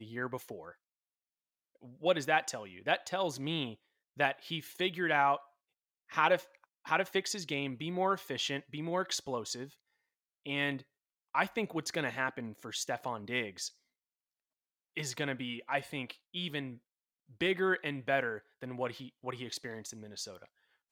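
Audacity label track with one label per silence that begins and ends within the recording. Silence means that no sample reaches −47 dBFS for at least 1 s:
0.720000	1.830000	silence
13.700000	14.970000	silence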